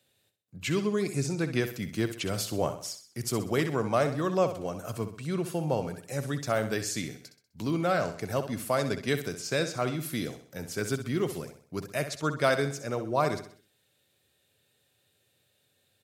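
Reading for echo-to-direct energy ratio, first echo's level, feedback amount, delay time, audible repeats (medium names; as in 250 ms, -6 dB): -9.5 dB, -10.5 dB, 43%, 64 ms, 4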